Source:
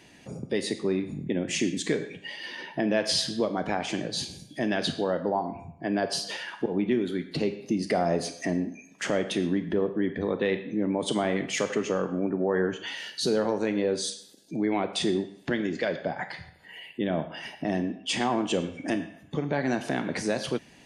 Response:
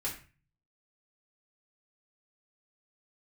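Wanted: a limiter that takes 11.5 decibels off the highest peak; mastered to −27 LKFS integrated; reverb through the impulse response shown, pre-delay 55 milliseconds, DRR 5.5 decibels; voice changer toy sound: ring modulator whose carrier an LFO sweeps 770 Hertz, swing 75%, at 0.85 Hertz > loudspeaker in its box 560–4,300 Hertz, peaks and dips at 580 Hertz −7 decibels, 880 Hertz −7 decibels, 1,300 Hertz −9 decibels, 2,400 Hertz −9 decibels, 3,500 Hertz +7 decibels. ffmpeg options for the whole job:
-filter_complex "[0:a]alimiter=limit=-24dB:level=0:latency=1,asplit=2[link_01][link_02];[1:a]atrim=start_sample=2205,adelay=55[link_03];[link_02][link_03]afir=irnorm=-1:irlink=0,volume=-8.5dB[link_04];[link_01][link_04]amix=inputs=2:normalize=0,aeval=exprs='val(0)*sin(2*PI*770*n/s+770*0.75/0.85*sin(2*PI*0.85*n/s))':channel_layout=same,highpass=560,equalizer=frequency=580:width_type=q:width=4:gain=-7,equalizer=frequency=880:width_type=q:width=4:gain=-7,equalizer=frequency=1300:width_type=q:width=4:gain=-9,equalizer=frequency=2400:width_type=q:width=4:gain=-9,equalizer=frequency=3500:width_type=q:width=4:gain=7,lowpass=frequency=4300:width=0.5412,lowpass=frequency=4300:width=1.3066,volume=13.5dB"

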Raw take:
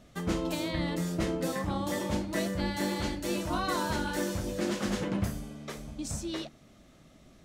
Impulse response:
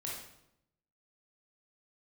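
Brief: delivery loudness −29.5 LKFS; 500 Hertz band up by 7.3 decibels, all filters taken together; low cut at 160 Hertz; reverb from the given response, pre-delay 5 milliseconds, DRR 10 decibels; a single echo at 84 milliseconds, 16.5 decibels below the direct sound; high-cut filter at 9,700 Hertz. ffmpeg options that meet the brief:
-filter_complex "[0:a]highpass=160,lowpass=9700,equalizer=frequency=500:width_type=o:gain=9,aecho=1:1:84:0.15,asplit=2[link_01][link_02];[1:a]atrim=start_sample=2205,adelay=5[link_03];[link_02][link_03]afir=irnorm=-1:irlink=0,volume=-10.5dB[link_04];[link_01][link_04]amix=inputs=2:normalize=0"

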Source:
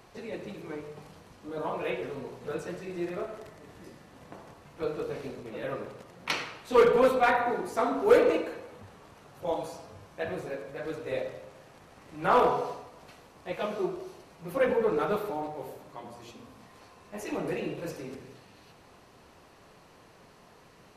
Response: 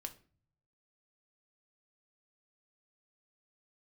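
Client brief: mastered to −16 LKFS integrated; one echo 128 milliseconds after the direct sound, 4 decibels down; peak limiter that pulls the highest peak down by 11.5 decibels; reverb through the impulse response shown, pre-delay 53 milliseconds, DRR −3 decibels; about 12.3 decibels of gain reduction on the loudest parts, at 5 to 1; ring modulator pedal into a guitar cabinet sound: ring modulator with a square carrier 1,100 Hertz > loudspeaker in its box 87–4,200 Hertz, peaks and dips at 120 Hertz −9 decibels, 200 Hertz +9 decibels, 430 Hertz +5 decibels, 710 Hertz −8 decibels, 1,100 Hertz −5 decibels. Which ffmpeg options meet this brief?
-filter_complex "[0:a]acompressor=threshold=-29dB:ratio=5,alimiter=level_in=5dB:limit=-24dB:level=0:latency=1,volume=-5dB,aecho=1:1:128:0.631,asplit=2[link_01][link_02];[1:a]atrim=start_sample=2205,adelay=53[link_03];[link_02][link_03]afir=irnorm=-1:irlink=0,volume=6.5dB[link_04];[link_01][link_04]amix=inputs=2:normalize=0,aeval=exprs='val(0)*sgn(sin(2*PI*1100*n/s))':channel_layout=same,highpass=87,equalizer=frequency=120:width_type=q:width=4:gain=-9,equalizer=frequency=200:width_type=q:width=4:gain=9,equalizer=frequency=430:width_type=q:width=4:gain=5,equalizer=frequency=710:width_type=q:width=4:gain=-8,equalizer=frequency=1100:width_type=q:width=4:gain=-5,lowpass=frequency=4200:width=0.5412,lowpass=frequency=4200:width=1.3066,volume=17.5dB"

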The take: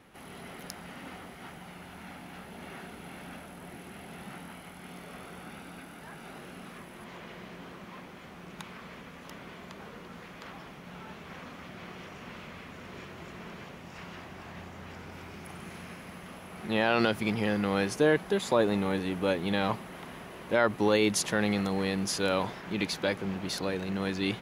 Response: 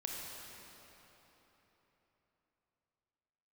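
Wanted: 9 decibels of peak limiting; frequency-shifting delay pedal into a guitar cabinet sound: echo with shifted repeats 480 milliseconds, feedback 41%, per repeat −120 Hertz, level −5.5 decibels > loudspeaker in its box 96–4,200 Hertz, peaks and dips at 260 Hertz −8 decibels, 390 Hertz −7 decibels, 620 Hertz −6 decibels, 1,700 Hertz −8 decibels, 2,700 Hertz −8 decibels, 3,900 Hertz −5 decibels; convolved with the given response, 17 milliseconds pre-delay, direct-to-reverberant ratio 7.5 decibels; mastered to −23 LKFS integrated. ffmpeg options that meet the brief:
-filter_complex "[0:a]alimiter=limit=-20dB:level=0:latency=1,asplit=2[link_01][link_02];[1:a]atrim=start_sample=2205,adelay=17[link_03];[link_02][link_03]afir=irnorm=-1:irlink=0,volume=-8.5dB[link_04];[link_01][link_04]amix=inputs=2:normalize=0,asplit=6[link_05][link_06][link_07][link_08][link_09][link_10];[link_06]adelay=480,afreqshift=-120,volume=-5.5dB[link_11];[link_07]adelay=960,afreqshift=-240,volume=-13.2dB[link_12];[link_08]adelay=1440,afreqshift=-360,volume=-21dB[link_13];[link_09]adelay=1920,afreqshift=-480,volume=-28.7dB[link_14];[link_10]adelay=2400,afreqshift=-600,volume=-36.5dB[link_15];[link_05][link_11][link_12][link_13][link_14][link_15]amix=inputs=6:normalize=0,highpass=96,equalizer=frequency=260:width_type=q:width=4:gain=-8,equalizer=frequency=390:width_type=q:width=4:gain=-7,equalizer=frequency=620:width_type=q:width=4:gain=-6,equalizer=frequency=1700:width_type=q:width=4:gain=-8,equalizer=frequency=2700:width_type=q:width=4:gain=-8,equalizer=frequency=3900:width_type=q:width=4:gain=-5,lowpass=frequency=4200:width=0.5412,lowpass=frequency=4200:width=1.3066,volume=16dB"

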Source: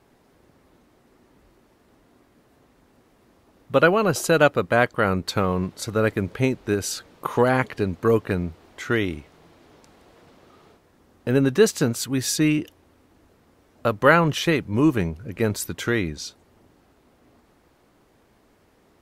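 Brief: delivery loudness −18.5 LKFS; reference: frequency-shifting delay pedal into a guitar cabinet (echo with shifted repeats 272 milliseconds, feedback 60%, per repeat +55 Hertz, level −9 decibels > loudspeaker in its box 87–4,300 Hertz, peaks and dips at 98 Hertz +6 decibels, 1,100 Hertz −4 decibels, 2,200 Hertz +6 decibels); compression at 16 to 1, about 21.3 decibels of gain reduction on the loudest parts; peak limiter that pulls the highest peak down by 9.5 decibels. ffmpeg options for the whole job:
ffmpeg -i in.wav -filter_complex "[0:a]acompressor=threshold=-32dB:ratio=16,alimiter=level_in=4dB:limit=-24dB:level=0:latency=1,volume=-4dB,asplit=8[link_01][link_02][link_03][link_04][link_05][link_06][link_07][link_08];[link_02]adelay=272,afreqshift=55,volume=-9dB[link_09];[link_03]adelay=544,afreqshift=110,volume=-13.4dB[link_10];[link_04]adelay=816,afreqshift=165,volume=-17.9dB[link_11];[link_05]adelay=1088,afreqshift=220,volume=-22.3dB[link_12];[link_06]adelay=1360,afreqshift=275,volume=-26.7dB[link_13];[link_07]adelay=1632,afreqshift=330,volume=-31.2dB[link_14];[link_08]adelay=1904,afreqshift=385,volume=-35.6dB[link_15];[link_01][link_09][link_10][link_11][link_12][link_13][link_14][link_15]amix=inputs=8:normalize=0,highpass=87,equalizer=frequency=98:width_type=q:width=4:gain=6,equalizer=frequency=1100:width_type=q:width=4:gain=-4,equalizer=frequency=2200:width_type=q:width=4:gain=6,lowpass=frequency=4300:width=0.5412,lowpass=frequency=4300:width=1.3066,volume=21dB" out.wav

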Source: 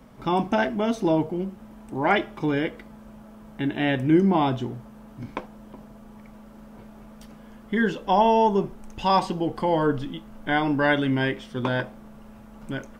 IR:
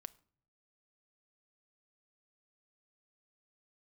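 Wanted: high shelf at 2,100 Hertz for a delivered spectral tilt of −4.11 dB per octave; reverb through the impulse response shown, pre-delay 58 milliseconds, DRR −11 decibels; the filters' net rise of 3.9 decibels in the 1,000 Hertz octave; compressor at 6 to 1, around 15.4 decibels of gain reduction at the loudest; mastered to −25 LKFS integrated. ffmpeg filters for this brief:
-filter_complex "[0:a]equalizer=frequency=1000:width_type=o:gain=3.5,highshelf=frequency=2100:gain=7,acompressor=threshold=-29dB:ratio=6,asplit=2[link_01][link_02];[1:a]atrim=start_sample=2205,adelay=58[link_03];[link_02][link_03]afir=irnorm=-1:irlink=0,volume=17dB[link_04];[link_01][link_04]amix=inputs=2:normalize=0,volume=-2.5dB"

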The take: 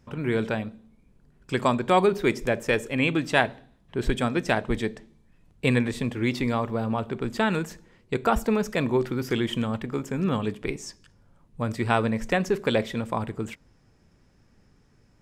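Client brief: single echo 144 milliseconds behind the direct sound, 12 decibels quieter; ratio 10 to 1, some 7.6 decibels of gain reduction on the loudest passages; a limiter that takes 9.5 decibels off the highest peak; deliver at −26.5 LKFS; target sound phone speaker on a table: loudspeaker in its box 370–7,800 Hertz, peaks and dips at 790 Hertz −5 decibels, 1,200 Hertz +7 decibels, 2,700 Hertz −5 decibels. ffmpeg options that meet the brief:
ffmpeg -i in.wav -af "acompressor=threshold=-24dB:ratio=10,alimiter=limit=-21dB:level=0:latency=1,highpass=frequency=370:width=0.5412,highpass=frequency=370:width=1.3066,equalizer=frequency=790:width_type=q:width=4:gain=-5,equalizer=frequency=1200:width_type=q:width=4:gain=7,equalizer=frequency=2700:width_type=q:width=4:gain=-5,lowpass=frequency=7800:width=0.5412,lowpass=frequency=7800:width=1.3066,aecho=1:1:144:0.251,volume=9.5dB" out.wav

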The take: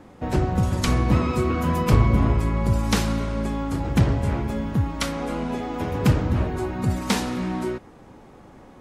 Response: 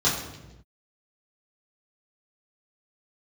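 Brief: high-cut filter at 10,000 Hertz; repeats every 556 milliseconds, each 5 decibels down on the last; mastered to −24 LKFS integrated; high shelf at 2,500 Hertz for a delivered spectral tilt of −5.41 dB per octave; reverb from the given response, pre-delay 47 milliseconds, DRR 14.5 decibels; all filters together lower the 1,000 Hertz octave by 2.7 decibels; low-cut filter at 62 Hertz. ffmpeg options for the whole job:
-filter_complex "[0:a]highpass=62,lowpass=10000,equalizer=frequency=1000:width_type=o:gain=-4.5,highshelf=frequency=2500:gain=6.5,aecho=1:1:556|1112|1668|2224|2780|3336|3892:0.562|0.315|0.176|0.0988|0.0553|0.031|0.0173,asplit=2[link_01][link_02];[1:a]atrim=start_sample=2205,adelay=47[link_03];[link_02][link_03]afir=irnorm=-1:irlink=0,volume=-29dB[link_04];[link_01][link_04]amix=inputs=2:normalize=0,volume=-1.5dB"

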